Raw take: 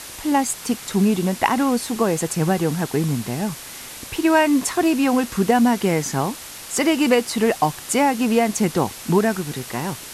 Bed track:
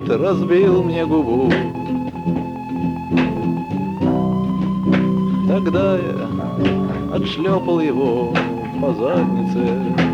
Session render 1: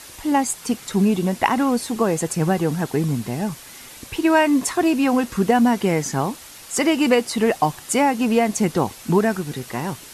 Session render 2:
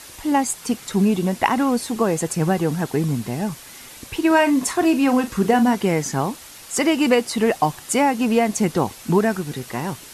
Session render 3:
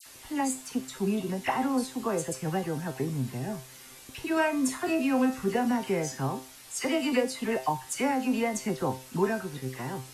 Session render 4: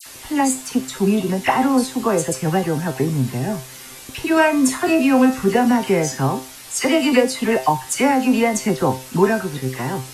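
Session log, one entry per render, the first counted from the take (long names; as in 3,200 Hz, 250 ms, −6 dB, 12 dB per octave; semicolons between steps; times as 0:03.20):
broadband denoise 6 dB, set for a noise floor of −37 dBFS
0:04.27–0:05.75: double-tracking delay 40 ms −11.5 dB
tuned comb filter 130 Hz, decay 0.35 s, harmonics all, mix 80%; all-pass dispersion lows, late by 61 ms, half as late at 1,800 Hz
level +11 dB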